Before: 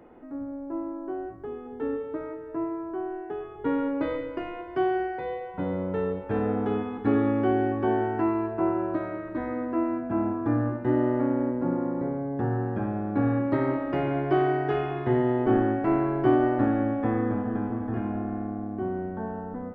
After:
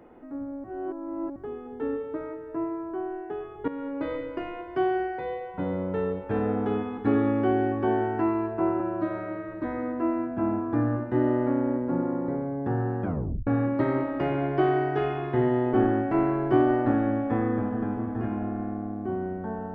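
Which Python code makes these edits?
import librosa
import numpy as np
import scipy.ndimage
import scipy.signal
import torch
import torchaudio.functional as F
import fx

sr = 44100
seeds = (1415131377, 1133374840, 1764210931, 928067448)

y = fx.edit(x, sr, fx.reverse_span(start_s=0.64, length_s=0.72),
    fx.fade_in_from(start_s=3.68, length_s=0.8, curve='qsin', floor_db=-12.5),
    fx.stretch_span(start_s=8.8, length_s=0.54, factor=1.5),
    fx.tape_stop(start_s=12.77, length_s=0.43), tone=tone)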